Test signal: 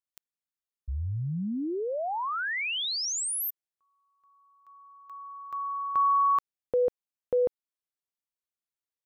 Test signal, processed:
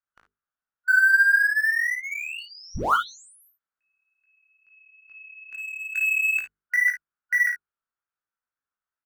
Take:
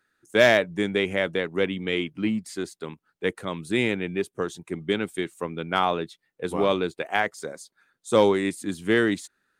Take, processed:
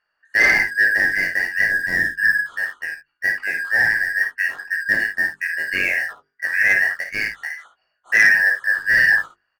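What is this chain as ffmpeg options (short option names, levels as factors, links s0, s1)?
-filter_complex "[0:a]afftfilt=real='real(if(lt(b,272),68*(eq(floor(b/68),0)*2+eq(floor(b/68),1)*0+eq(floor(b/68),2)*3+eq(floor(b/68),3)*1)+mod(b,68),b),0)':imag='imag(if(lt(b,272),68*(eq(floor(b/68),0)*2+eq(floor(b/68),1)*0+eq(floor(b/68),2)*3+eq(floor(b/68),3)*1)+mod(b,68),b),0)':win_size=2048:overlap=0.75,lowpass=f=1400:t=q:w=4.3,bandreject=f=50:t=h:w=6,bandreject=f=100:t=h:w=6,bandreject=f=150:t=h:w=6,bandreject=f=200:t=h:w=6,bandreject=f=250:t=h:w=6,bandreject=f=300:t=h:w=6,bandreject=f=350:t=h:w=6,bandreject=f=400:t=h:w=6,bandreject=f=450:t=h:w=6,flanger=delay=18.5:depth=2.1:speed=2.3,asplit=2[s0][s1];[s1]aeval=exprs='sgn(val(0))*max(abs(val(0))-0.00891,0)':c=same,volume=0.422[s2];[s0][s2]amix=inputs=2:normalize=0,lowshelf=f=130:g=6.5,asplit=2[s3][s4];[s4]aecho=0:1:37|55|67:0.237|0.398|0.15[s5];[s3][s5]amix=inputs=2:normalize=0,crystalizer=i=3.5:c=0,asoftclip=type=tanh:threshold=0.422,volume=1.19"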